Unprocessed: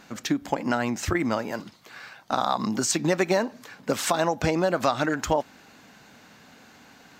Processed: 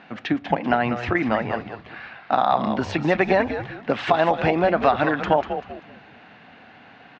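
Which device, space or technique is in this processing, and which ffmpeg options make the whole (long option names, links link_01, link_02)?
frequency-shifting delay pedal into a guitar cabinet: -filter_complex "[0:a]asplit=5[link_01][link_02][link_03][link_04][link_05];[link_02]adelay=194,afreqshift=-120,volume=-8.5dB[link_06];[link_03]adelay=388,afreqshift=-240,volume=-17.9dB[link_07];[link_04]adelay=582,afreqshift=-360,volume=-27.2dB[link_08];[link_05]adelay=776,afreqshift=-480,volume=-36.6dB[link_09];[link_01][link_06][link_07][link_08][link_09]amix=inputs=5:normalize=0,highpass=88,equalizer=frequency=730:width_type=q:width=4:gain=7,equalizer=frequency=1800:width_type=q:width=4:gain=4,equalizer=frequency=2700:width_type=q:width=4:gain=4,lowpass=frequency=3400:width=0.5412,lowpass=frequency=3400:width=1.3066,volume=2dB"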